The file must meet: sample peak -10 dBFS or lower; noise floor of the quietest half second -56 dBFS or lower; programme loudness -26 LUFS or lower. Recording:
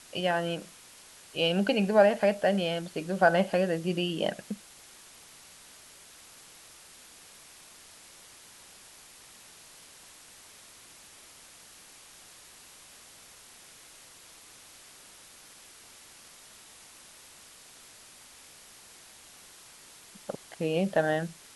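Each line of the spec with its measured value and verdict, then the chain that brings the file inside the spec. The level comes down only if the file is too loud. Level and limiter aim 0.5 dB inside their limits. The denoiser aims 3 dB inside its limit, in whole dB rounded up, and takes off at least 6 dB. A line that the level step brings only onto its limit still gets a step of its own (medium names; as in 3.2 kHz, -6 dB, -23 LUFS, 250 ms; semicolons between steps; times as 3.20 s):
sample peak -9.0 dBFS: fail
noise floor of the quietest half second -53 dBFS: fail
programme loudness -28.0 LUFS: pass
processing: noise reduction 6 dB, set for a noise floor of -53 dBFS; peak limiter -10.5 dBFS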